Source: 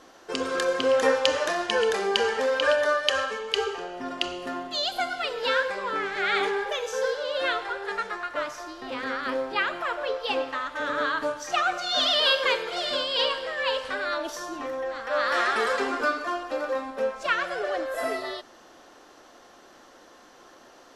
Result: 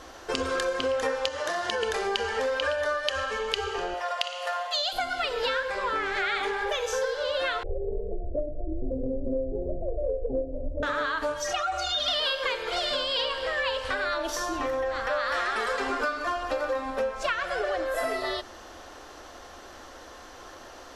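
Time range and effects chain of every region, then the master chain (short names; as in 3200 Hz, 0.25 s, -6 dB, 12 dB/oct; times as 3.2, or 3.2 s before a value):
1.28–1.83 HPF 97 Hz + notch 2500 Hz, Q 9.9 + compressor 2.5:1, threshold -28 dBFS
3.94–4.93 brick-wall FIR high-pass 430 Hz + flutter echo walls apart 9.8 m, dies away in 0.34 s
7.63–10.83 steep low-pass 630 Hz 72 dB/oct + tilt -3 dB/oct
11.34–12.08 metallic resonator 69 Hz, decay 0.35 s, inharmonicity 0.03 + fast leveller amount 50%
whole clip: resonant low shelf 110 Hz +12 dB, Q 1.5; notches 50/100/150/200/250/300/350/400/450 Hz; compressor, threshold -32 dBFS; gain +6.5 dB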